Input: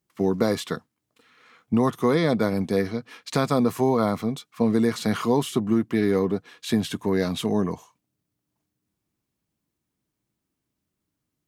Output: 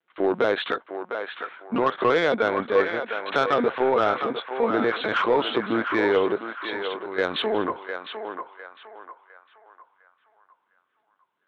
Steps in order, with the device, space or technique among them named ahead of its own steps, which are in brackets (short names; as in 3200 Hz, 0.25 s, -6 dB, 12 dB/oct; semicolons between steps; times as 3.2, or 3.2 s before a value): 6.36–7.18 pre-emphasis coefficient 0.8; talking toy (LPC vocoder at 8 kHz pitch kept; HPF 450 Hz 12 dB/oct; bell 1500 Hz +8 dB 0.26 oct; soft clip -19.5 dBFS, distortion -16 dB); narrowing echo 0.705 s, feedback 42%, band-pass 1200 Hz, level -5 dB; gain +7.5 dB